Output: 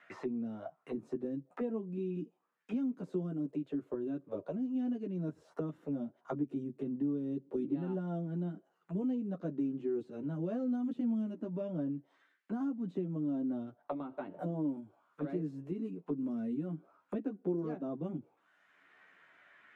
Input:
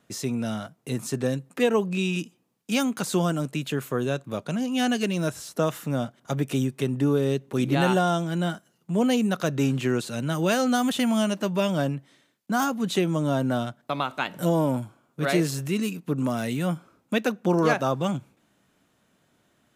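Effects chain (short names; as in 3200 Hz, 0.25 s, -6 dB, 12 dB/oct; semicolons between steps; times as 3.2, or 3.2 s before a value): auto-wah 270–2000 Hz, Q 2.8, down, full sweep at -24 dBFS; chorus voices 6, 0.21 Hz, delay 12 ms, depth 1.7 ms; three-band squash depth 70%; gain -2.5 dB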